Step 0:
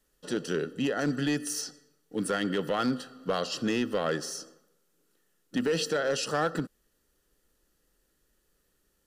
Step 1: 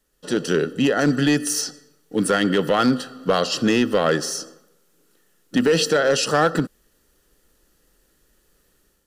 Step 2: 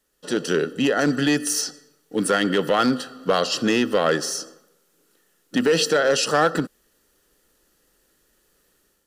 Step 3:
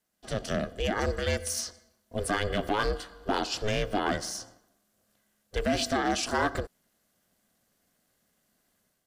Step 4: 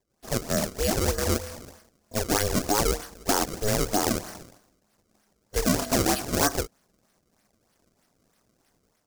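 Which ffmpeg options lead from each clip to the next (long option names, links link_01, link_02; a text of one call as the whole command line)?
ffmpeg -i in.wav -af "dynaudnorm=framelen=110:gausssize=5:maxgain=7.5dB,volume=2.5dB" out.wav
ffmpeg -i in.wav -af "lowshelf=frequency=150:gain=-9" out.wav
ffmpeg -i in.wav -af "aeval=exprs='val(0)*sin(2*PI*210*n/s)':channel_layout=same,volume=-5.5dB" out.wav
ffmpeg -i in.wav -filter_complex "[0:a]acrossover=split=3300[link_01][link_02];[link_02]acompressor=threshold=-50dB:ratio=4:attack=1:release=60[link_03];[link_01][link_03]amix=inputs=2:normalize=0,acrusher=samples=29:mix=1:aa=0.000001:lfo=1:lforange=46.4:lforate=3.2,highshelf=frequency=4300:width_type=q:width=1.5:gain=7.5,volume=3.5dB" out.wav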